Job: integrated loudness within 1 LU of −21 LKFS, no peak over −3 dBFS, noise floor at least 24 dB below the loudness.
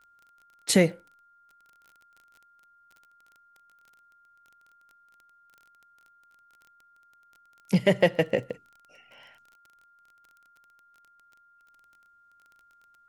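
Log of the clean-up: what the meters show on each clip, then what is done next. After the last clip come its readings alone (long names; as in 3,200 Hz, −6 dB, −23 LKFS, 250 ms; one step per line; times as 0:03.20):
crackle rate 20 per second; interfering tone 1,400 Hz; level of the tone −58 dBFS; integrated loudness −25.0 LKFS; sample peak −7.5 dBFS; target loudness −21.0 LKFS
→ click removal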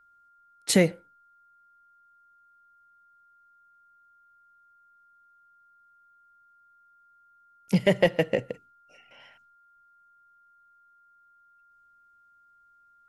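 crackle rate 0 per second; interfering tone 1,400 Hz; level of the tone −58 dBFS
→ notch filter 1,400 Hz, Q 30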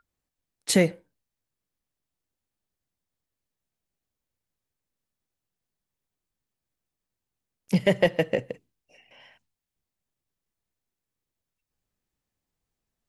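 interfering tone none found; integrated loudness −24.5 LKFS; sample peak −7.5 dBFS; target loudness −21.0 LKFS
→ level +3.5 dB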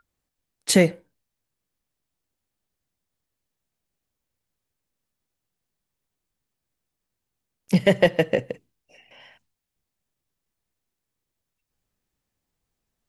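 integrated loudness −21.0 LKFS; sample peak −4.0 dBFS; background noise floor −83 dBFS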